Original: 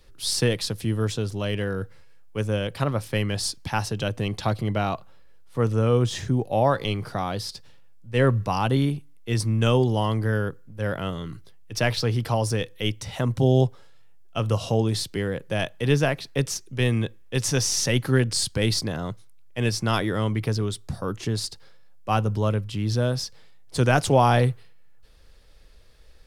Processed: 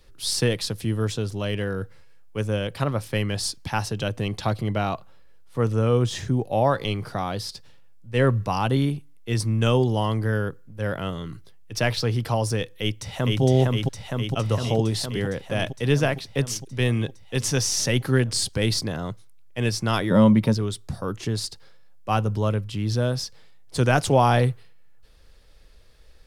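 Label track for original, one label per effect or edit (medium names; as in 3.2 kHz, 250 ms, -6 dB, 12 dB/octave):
12.710000	13.420000	echo throw 460 ms, feedback 75%, level -1 dB
20.100000	20.530000	small resonant body resonances 210/570/920/3700 Hz, height 17 dB -> 12 dB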